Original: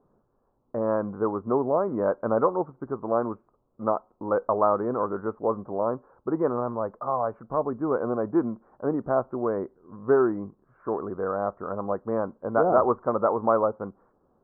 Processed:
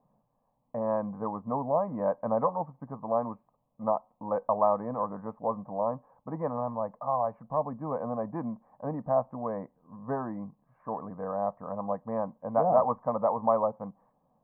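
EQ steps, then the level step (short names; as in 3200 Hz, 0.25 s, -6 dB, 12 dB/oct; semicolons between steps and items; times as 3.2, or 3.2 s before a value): resonant low shelf 110 Hz -8 dB, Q 1.5; fixed phaser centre 1400 Hz, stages 6; 0.0 dB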